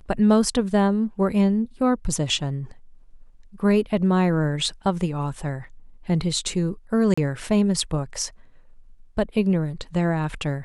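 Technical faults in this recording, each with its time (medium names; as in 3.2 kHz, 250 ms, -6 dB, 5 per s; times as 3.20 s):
7.14–7.17 s: dropout 35 ms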